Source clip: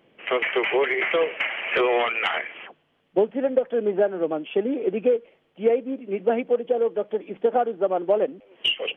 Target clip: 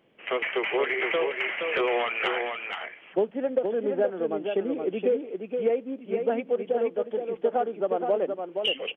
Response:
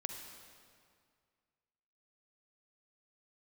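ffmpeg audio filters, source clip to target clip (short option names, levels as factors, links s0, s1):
-af "aecho=1:1:471:0.531,volume=0.596"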